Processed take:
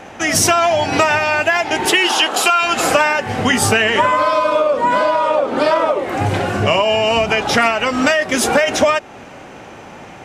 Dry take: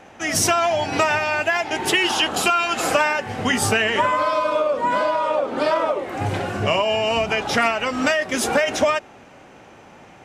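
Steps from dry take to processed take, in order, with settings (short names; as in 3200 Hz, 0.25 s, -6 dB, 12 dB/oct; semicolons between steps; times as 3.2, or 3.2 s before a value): 1.85–2.61 HPF 210 Hz -> 500 Hz 12 dB/oct; in parallel at +2 dB: compressor, threshold -28 dBFS, peak gain reduction 14 dB; on the sum: gain +2.5 dB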